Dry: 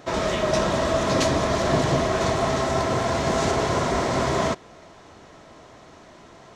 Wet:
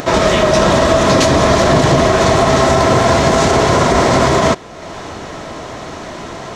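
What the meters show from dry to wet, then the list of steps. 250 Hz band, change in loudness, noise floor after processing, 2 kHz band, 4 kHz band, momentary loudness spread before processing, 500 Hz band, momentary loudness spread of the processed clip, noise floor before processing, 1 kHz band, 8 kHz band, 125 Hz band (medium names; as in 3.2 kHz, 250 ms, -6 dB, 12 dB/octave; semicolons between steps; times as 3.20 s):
+11.5 dB, +11.5 dB, -29 dBFS, +11.5 dB, +11.5 dB, 2 LU, +11.5 dB, 17 LU, -48 dBFS, +11.5 dB, +11.5 dB, +11.0 dB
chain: upward compressor, threshold -32 dBFS; loudness maximiser +14 dB; trim -1 dB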